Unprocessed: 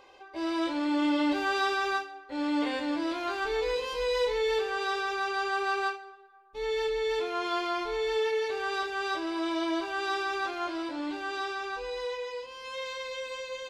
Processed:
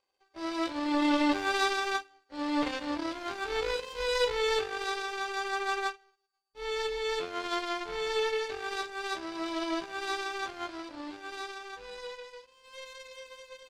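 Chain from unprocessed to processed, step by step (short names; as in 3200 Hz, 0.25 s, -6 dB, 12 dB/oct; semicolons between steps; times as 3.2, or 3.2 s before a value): whine 4600 Hz -58 dBFS; power-law curve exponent 2; gain +5.5 dB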